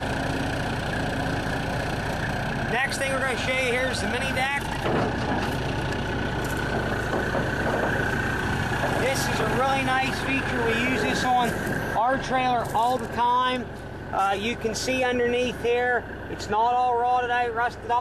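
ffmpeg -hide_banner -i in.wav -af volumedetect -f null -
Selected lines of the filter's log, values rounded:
mean_volume: -24.9 dB
max_volume: -10.7 dB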